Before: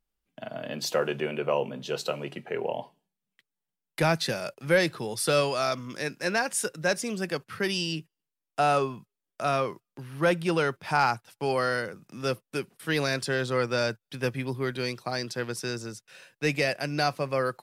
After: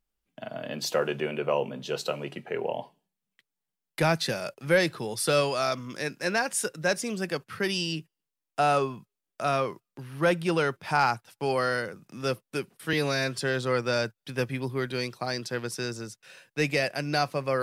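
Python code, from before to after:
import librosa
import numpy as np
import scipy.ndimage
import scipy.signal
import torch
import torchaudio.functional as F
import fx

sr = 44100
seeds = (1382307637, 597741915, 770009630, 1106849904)

y = fx.edit(x, sr, fx.stretch_span(start_s=12.93, length_s=0.3, factor=1.5), tone=tone)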